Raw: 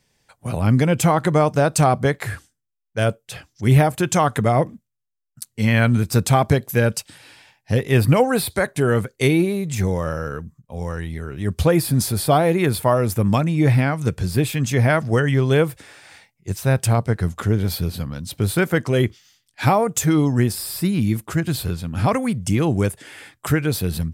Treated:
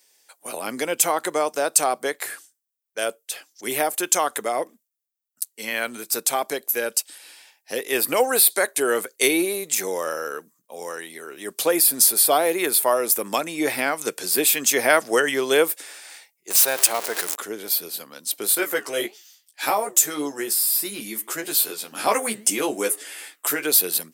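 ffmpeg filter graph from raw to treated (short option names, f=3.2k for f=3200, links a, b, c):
-filter_complex "[0:a]asettb=1/sr,asplit=3[a][b][c];[a]atrim=end=16.504[d];[b]atrim=start=16.5:end=17.36,asetpts=PTS-STARTPTS,afade=t=in:d=0.004:c=qsin,afade=t=out:st=0.856:d=0.004:c=qsin,aeval=exprs='val(0)+0.5*0.0708*sgn(val(0))':c=same,asplit=2[e][f];[f]highpass=f=720:p=1,volume=10dB,asoftclip=type=tanh:threshold=-6.5dB[g];[e][g]amix=inputs=2:normalize=0,lowpass=f=7.8k:p=1,volume=-6dB[h];[c]atrim=start=17.356[i];[d][h]acrossfade=d=0.004:c1=hsin:c2=qsin[j];[j][i]acrossfade=d=0.004:c1=qsin:c2=hsin,asettb=1/sr,asplit=3[k][l][m];[k]atrim=end=18.554[n];[l]atrim=start=18.55:end=23.63,asetpts=PTS-STARTPTS,afade=t=in:d=0.004:c=qsin,afade=t=out:st=5.076:d=0.004:c=qsin,flanger=delay=4.4:depth=5.7:regen=88:speed=1.7:shape=triangular,asplit=2[o][p];[p]adelay=14,volume=-3dB[q];[o][q]amix=inputs=2:normalize=0,atrim=end_sample=224028[r];[m]atrim=start=23.626[s];[n][r]acrossfade=d=0.004:c1=hsin:c2=qsin[t];[t][s]acrossfade=d=0.004:c1=qsin:c2=hsin,highpass=f=330:w=0.5412,highpass=f=330:w=1.3066,aemphasis=mode=production:type=75kf,dynaudnorm=f=510:g=5:m=11.5dB,volume=-1dB"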